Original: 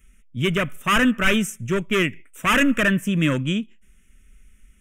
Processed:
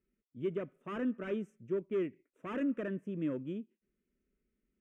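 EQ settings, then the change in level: band-pass 380 Hz, Q 1.9; -9.0 dB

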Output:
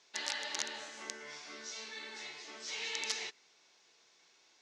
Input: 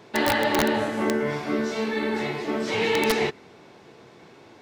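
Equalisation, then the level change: ladder low-pass 7300 Hz, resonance 50%; air absorption 51 m; differentiator; +6.0 dB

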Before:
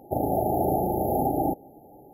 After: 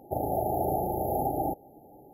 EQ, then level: dynamic EQ 240 Hz, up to -6 dB, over -41 dBFS, Q 1.2; -2.5 dB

